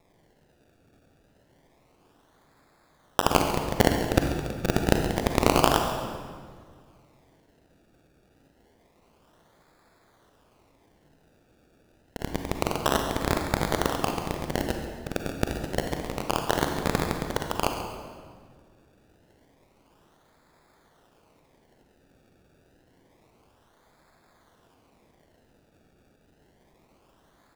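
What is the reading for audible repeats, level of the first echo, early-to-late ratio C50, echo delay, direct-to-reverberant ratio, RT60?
1, −14.0 dB, 4.0 dB, 137 ms, 3.5 dB, 1.8 s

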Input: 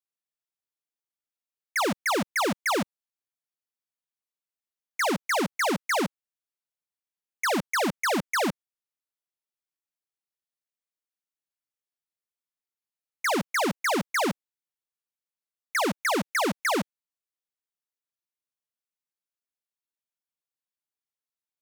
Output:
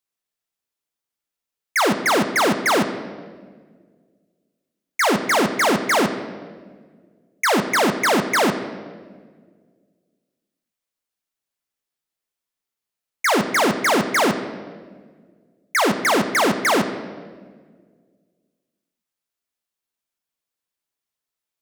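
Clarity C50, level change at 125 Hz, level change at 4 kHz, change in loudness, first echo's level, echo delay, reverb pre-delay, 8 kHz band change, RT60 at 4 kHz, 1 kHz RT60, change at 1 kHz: 9.5 dB, +7.5 dB, +7.5 dB, +7.5 dB, no echo audible, no echo audible, 3 ms, +7.5 dB, 1.2 s, 1.4 s, +8.0 dB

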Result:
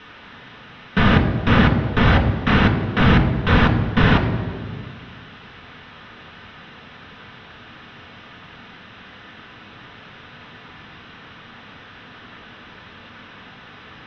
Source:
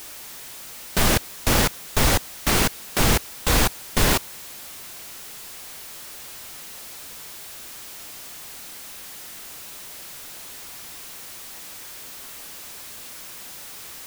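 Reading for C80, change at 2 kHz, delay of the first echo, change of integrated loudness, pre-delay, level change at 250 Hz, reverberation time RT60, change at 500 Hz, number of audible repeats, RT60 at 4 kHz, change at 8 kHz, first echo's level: 10.0 dB, +5.5 dB, no echo audible, +9.0 dB, 3 ms, +10.0 dB, 1.8 s, +4.0 dB, no echo audible, 1.3 s, below −25 dB, no echo audible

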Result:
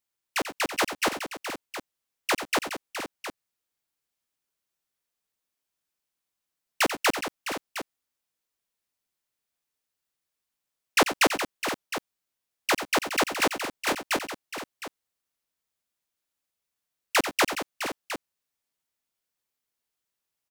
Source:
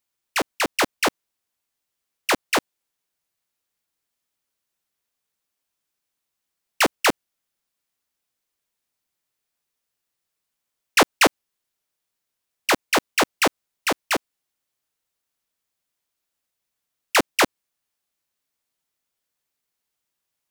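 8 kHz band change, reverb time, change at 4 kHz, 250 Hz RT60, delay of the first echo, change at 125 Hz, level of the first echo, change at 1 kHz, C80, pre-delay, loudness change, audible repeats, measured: −4.0 dB, no reverb audible, −4.0 dB, no reverb audible, 90 ms, −4.0 dB, −11.0 dB, −4.0 dB, no reverb audible, no reverb audible, −6.0 dB, 3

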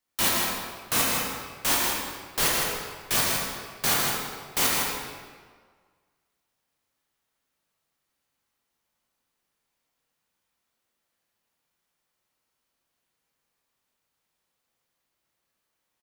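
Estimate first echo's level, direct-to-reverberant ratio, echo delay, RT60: −4.5 dB, −5.5 dB, 158 ms, 1.7 s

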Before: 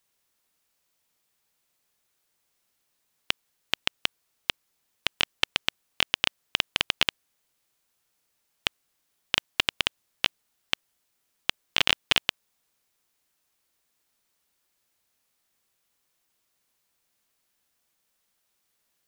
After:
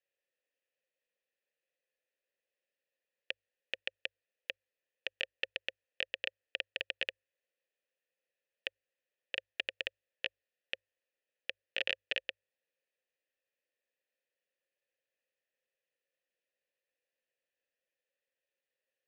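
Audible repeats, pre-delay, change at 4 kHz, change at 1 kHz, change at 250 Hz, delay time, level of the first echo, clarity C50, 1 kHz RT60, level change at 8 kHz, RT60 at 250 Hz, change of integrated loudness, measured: no echo audible, no reverb audible, −14.5 dB, −21.5 dB, −18.0 dB, no echo audible, no echo audible, no reverb audible, no reverb audible, below −25 dB, no reverb audible, −12.0 dB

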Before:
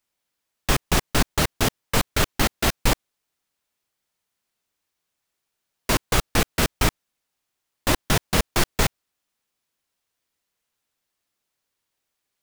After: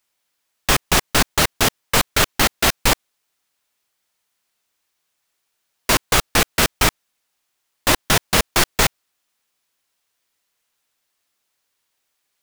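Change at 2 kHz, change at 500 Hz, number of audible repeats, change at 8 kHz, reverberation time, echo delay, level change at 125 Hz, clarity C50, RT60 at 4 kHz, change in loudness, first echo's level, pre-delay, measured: +6.5 dB, +3.5 dB, no echo audible, +7.0 dB, no reverb audible, no echo audible, 0.0 dB, no reverb audible, no reverb audible, +5.5 dB, no echo audible, no reverb audible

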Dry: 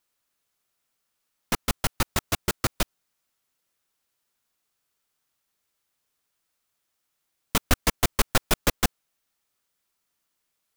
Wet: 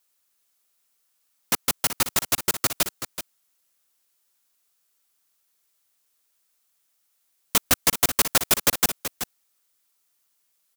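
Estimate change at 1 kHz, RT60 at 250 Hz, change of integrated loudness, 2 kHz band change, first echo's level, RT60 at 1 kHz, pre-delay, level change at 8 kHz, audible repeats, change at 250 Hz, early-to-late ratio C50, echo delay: +0.5 dB, no reverb audible, +4.0 dB, +1.5 dB, −10.5 dB, no reverb audible, no reverb audible, +7.0 dB, 1, −2.5 dB, no reverb audible, 379 ms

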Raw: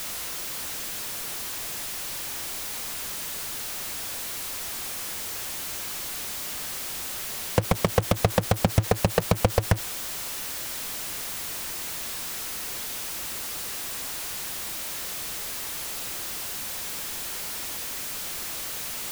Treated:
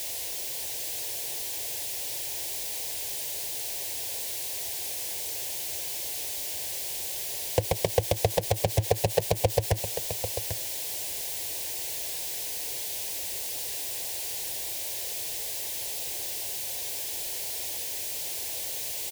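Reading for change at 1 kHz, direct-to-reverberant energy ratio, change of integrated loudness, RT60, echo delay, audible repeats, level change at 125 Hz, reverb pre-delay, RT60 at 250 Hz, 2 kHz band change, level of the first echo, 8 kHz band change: −4.0 dB, no reverb audible, −0.5 dB, no reverb audible, 793 ms, 1, −4.0 dB, no reverb audible, no reverb audible, −5.5 dB, −10.0 dB, 0.0 dB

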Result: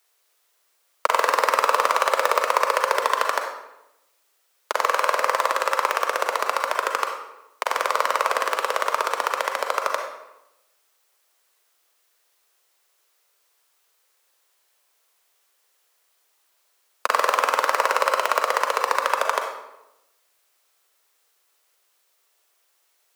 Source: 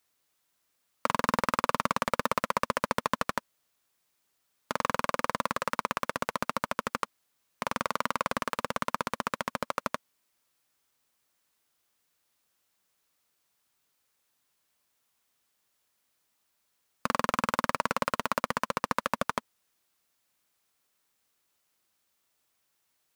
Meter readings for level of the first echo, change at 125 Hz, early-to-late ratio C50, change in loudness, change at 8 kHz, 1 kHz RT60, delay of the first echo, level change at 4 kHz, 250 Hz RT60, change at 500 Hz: no echo audible, below −35 dB, 4.5 dB, +9.0 dB, +9.0 dB, 0.90 s, no echo audible, +9.0 dB, 1.1 s, +10.0 dB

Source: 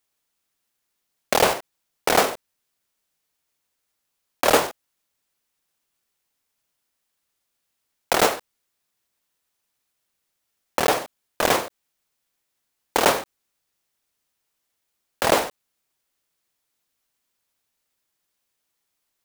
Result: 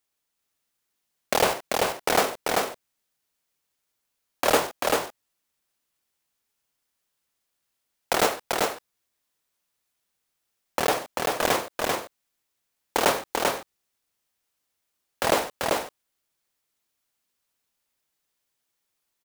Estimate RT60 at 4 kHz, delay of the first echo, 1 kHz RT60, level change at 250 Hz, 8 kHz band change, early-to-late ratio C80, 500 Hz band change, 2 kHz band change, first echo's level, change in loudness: no reverb audible, 390 ms, no reverb audible, −1.5 dB, −1.5 dB, no reverb audible, −1.5 dB, −1.5 dB, −3.0 dB, −3.5 dB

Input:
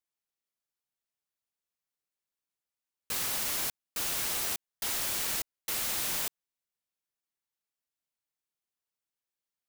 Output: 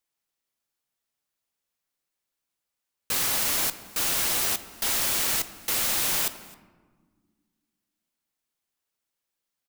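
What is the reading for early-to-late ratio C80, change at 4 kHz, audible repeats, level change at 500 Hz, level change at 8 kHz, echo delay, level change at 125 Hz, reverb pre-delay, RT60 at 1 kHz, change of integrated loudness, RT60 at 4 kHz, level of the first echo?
14.5 dB, +6.5 dB, 1, +7.0 dB, +6.5 dB, 264 ms, +6.5 dB, 4 ms, 1.4 s, +6.5 dB, 0.70 s, −23.0 dB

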